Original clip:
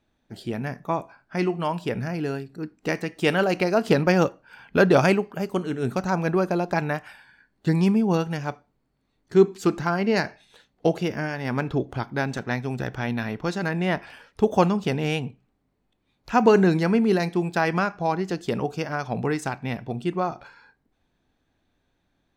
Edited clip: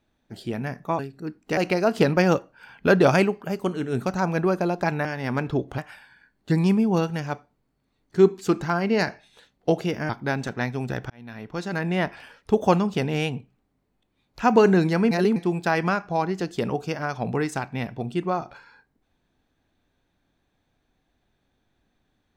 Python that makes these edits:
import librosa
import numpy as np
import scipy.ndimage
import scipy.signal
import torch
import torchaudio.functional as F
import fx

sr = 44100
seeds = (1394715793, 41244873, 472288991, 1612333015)

y = fx.edit(x, sr, fx.cut(start_s=0.99, length_s=1.36),
    fx.cut(start_s=2.93, length_s=0.54),
    fx.move(start_s=11.26, length_s=0.73, to_s=6.95),
    fx.fade_in_span(start_s=13.0, length_s=0.76),
    fx.reverse_span(start_s=17.01, length_s=0.25), tone=tone)